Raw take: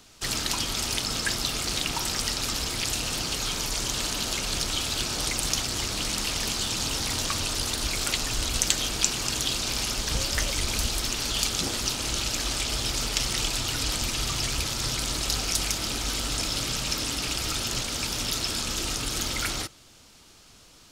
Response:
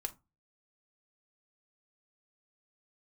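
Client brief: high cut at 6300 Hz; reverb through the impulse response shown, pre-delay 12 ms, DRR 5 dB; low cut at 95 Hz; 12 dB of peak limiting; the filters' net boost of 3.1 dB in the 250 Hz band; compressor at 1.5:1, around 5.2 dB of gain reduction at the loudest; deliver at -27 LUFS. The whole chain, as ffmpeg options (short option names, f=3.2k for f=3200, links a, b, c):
-filter_complex "[0:a]highpass=95,lowpass=6.3k,equalizer=f=250:t=o:g=4,acompressor=threshold=-35dB:ratio=1.5,alimiter=limit=-21dB:level=0:latency=1,asplit=2[a][b];[1:a]atrim=start_sample=2205,adelay=12[c];[b][c]afir=irnorm=-1:irlink=0,volume=-4.5dB[d];[a][d]amix=inputs=2:normalize=0,volume=4dB"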